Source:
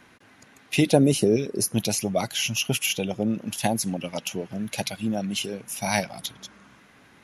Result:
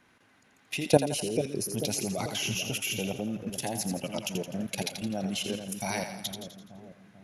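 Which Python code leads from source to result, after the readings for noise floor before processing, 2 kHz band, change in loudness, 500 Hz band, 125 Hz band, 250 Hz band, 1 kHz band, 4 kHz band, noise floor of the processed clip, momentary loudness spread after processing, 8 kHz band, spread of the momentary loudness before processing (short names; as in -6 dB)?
-55 dBFS, -6.0 dB, -6.0 dB, -5.0 dB, -6.5 dB, -7.5 dB, -5.5 dB, -5.0 dB, -63 dBFS, 11 LU, -5.0 dB, 12 LU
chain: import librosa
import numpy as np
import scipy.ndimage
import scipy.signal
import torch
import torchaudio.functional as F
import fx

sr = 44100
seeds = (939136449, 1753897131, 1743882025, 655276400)

y = fx.level_steps(x, sr, step_db=16)
y = fx.echo_split(y, sr, split_hz=600.0, low_ms=441, high_ms=84, feedback_pct=52, wet_db=-7)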